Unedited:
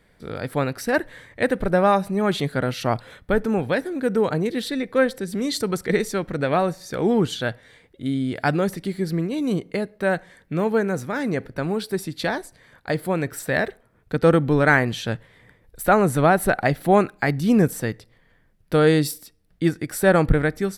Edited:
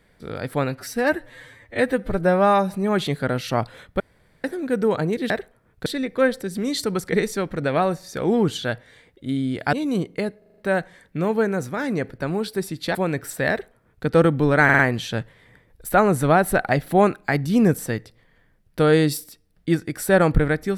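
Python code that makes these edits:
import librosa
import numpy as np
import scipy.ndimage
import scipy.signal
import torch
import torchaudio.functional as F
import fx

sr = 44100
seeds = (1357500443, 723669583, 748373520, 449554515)

y = fx.edit(x, sr, fx.stretch_span(start_s=0.69, length_s=1.34, factor=1.5),
    fx.room_tone_fill(start_s=3.33, length_s=0.44),
    fx.cut(start_s=8.5, length_s=0.79),
    fx.stutter(start_s=9.94, slice_s=0.04, count=6),
    fx.cut(start_s=12.31, length_s=0.73),
    fx.duplicate(start_s=13.59, length_s=0.56, to_s=4.63),
    fx.stutter(start_s=14.73, slice_s=0.05, count=4), tone=tone)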